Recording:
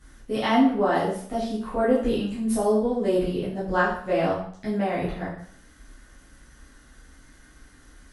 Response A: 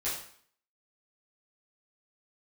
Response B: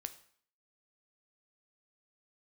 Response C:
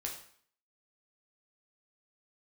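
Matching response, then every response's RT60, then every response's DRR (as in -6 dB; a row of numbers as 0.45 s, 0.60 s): A; 0.55 s, 0.55 s, 0.55 s; -10.5 dB, 9.5 dB, -0.5 dB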